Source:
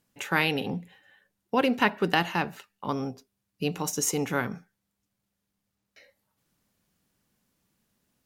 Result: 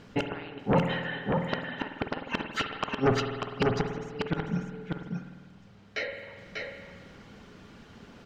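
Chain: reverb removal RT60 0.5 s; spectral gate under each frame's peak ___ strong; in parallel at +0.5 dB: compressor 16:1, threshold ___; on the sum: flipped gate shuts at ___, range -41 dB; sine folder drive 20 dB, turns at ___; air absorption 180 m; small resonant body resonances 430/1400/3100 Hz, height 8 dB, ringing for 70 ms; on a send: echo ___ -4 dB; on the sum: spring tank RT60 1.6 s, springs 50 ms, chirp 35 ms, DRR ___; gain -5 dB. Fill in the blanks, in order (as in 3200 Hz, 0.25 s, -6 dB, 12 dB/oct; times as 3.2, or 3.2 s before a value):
-35 dB, -31 dBFS, -17 dBFS, -14 dBFS, 0.592 s, 5.5 dB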